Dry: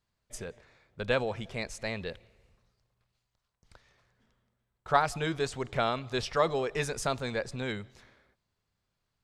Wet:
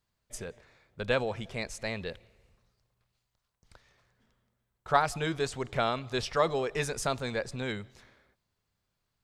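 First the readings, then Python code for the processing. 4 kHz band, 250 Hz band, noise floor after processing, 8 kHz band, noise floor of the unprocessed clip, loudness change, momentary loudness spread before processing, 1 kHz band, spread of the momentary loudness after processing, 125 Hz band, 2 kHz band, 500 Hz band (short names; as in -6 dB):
+0.5 dB, 0.0 dB, -82 dBFS, +1.0 dB, -82 dBFS, 0.0 dB, 15 LU, 0.0 dB, 15 LU, 0.0 dB, 0.0 dB, 0.0 dB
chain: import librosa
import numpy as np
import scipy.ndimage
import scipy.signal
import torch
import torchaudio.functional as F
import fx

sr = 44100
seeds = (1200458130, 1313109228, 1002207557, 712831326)

y = fx.high_shelf(x, sr, hz=10000.0, db=4.0)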